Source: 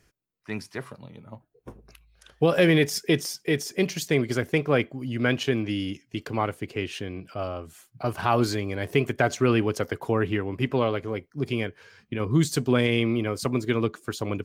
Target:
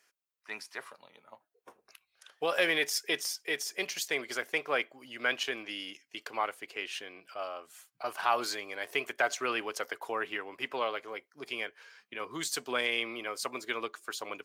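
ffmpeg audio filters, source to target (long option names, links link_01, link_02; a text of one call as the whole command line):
ffmpeg -i in.wav -af "highpass=760,volume=-2dB" out.wav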